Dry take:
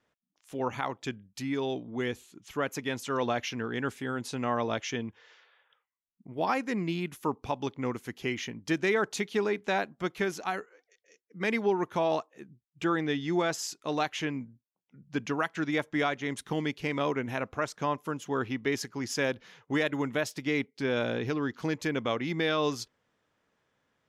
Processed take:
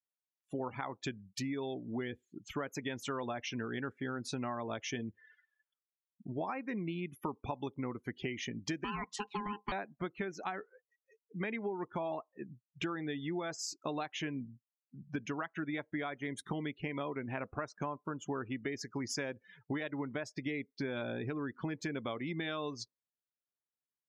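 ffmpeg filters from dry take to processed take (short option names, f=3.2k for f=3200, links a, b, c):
-filter_complex "[0:a]asettb=1/sr,asplit=3[a][b][c];[a]atrim=end=8.844[d];[b]atrim=start=8.84:end=9.72,asetpts=PTS-STARTPTS,afade=t=in:d=0.004:c=qsin,afade=t=out:st=0.876:d=0.004:c=qsin,aeval=exprs='val(0)*sin(2*PI*620*n/s)':c=same[e];[c]atrim=start=9.716[f];[d][e]acrossfade=d=0.004:c1=hsin:c2=qsin[g];[g][f]acrossfade=d=0.004:c1=qsin:c2=hsin,bandreject=f=480:w=13,acompressor=threshold=-38dB:ratio=10,afftdn=nr=36:nf=-50,volume=3.5dB"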